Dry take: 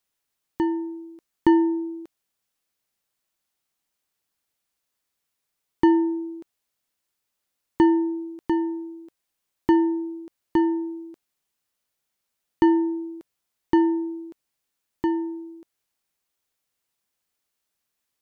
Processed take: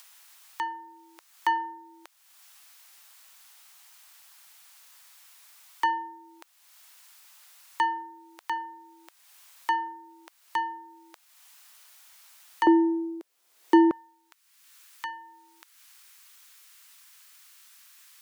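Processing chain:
high-pass filter 810 Hz 24 dB per octave, from 0:12.67 330 Hz, from 0:13.91 1,100 Hz
upward compression, threshold −39 dBFS
level +3.5 dB

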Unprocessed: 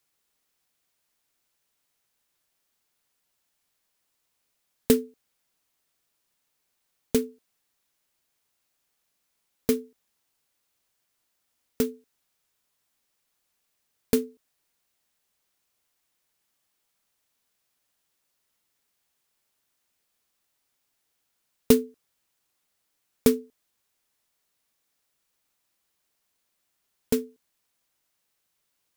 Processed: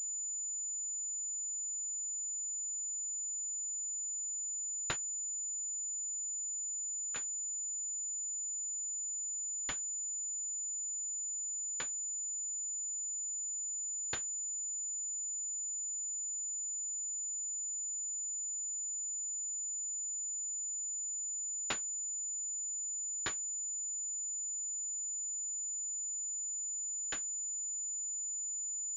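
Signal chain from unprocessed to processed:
0:04.96–0:07.16: treble cut that deepens with the level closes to 1,700 Hz, closed at −32 dBFS
Chebyshev high-pass with heavy ripple 1,100 Hz, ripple 6 dB
switching amplifier with a slow clock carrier 7,000 Hz

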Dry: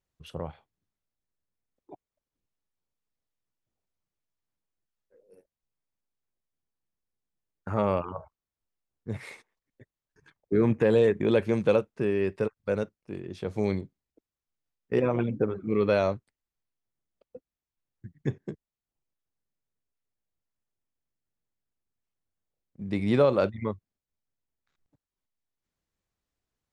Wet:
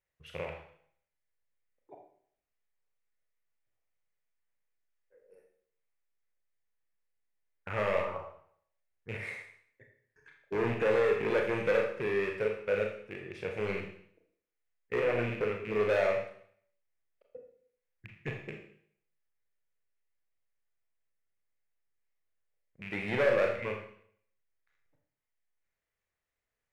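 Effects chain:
loose part that buzzes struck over −35 dBFS, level −31 dBFS
hard clipping −21 dBFS, distortion −10 dB
graphic EQ with 10 bands 250 Hz −8 dB, 500 Hz +6 dB, 2,000 Hz +12 dB, 4,000 Hz −3 dB
four-comb reverb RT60 0.61 s, combs from 26 ms, DRR 1.5 dB
level −7.5 dB

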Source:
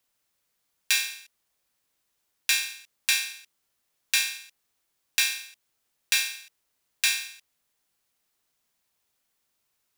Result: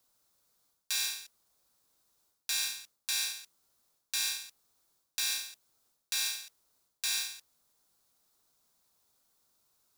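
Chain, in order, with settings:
flat-topped bell 2,300 Hz −8.5 dB 1.1 octaves
reversed playback
downward compressor 16 to 1, threshold −32 dBFS, peak gain reduction 13.5 dB
reversed playback
noise that follows the level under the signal 19 dB
level +3.5 dB

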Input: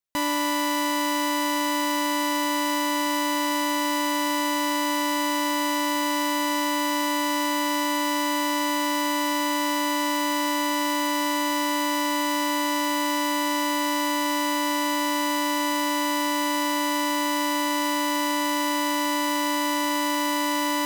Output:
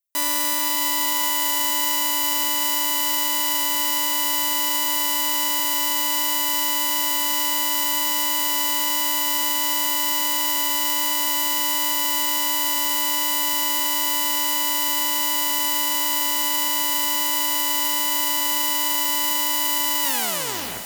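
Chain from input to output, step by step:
turntable brake at the end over 0.82 s
RIAA equalisation recording
on a send: feedback delay with all-pass diffusion 520 ms, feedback 58%, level −7 dB
on the sum: expander for the loud parts 1.5 to 1, over −31 dBFS
level −2.5 dB

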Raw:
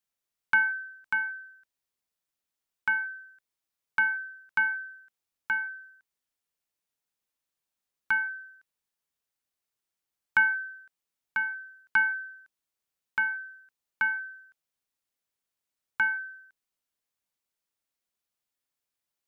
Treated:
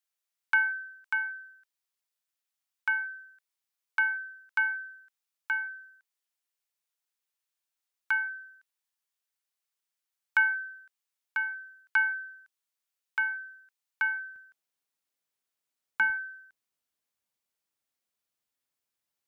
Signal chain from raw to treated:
high-pass filter 1,000 Hz 6 dB per octave, from 0:14.36 190 Hz, from 0:16.10 45 Hz

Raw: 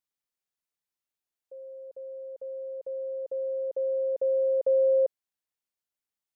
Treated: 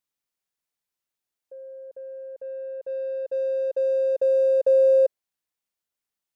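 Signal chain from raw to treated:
dynamic equaliser 540 Hz, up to +5 dB, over −36 dBFS, Q 1.3
in parallel at −8 dB: soft clipping −38.5 dBFS, distortion −2 dB

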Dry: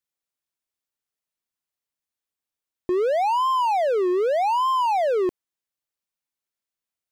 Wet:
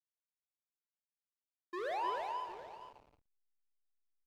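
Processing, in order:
source passing by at 0:01.61, 13 m/s, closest 1.9 metres
noise gate −42 dBFS, range −36 dB
tilt shelving filter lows −8 dB, about 1,100 Hz
notch filter 2,900 Hz, Q 15
phase-vocoder stretch with locked phases 0.6×
loudspeaker in its box 390–4,800 Hz, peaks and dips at 1,100 Hz +7 dB, 1,700 Hz +9 dB, 3,700 Hz +7 dB
on a send: multi-tap delay 42/187/304/753 ms −11/−17/−4/−14.5 dB
on the sum: spring reverb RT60 2.7 s, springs 56 ms, chirp 50 ms, DRR 8 dB
slack as between gear wheels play −56 dBFS
level +8 dB

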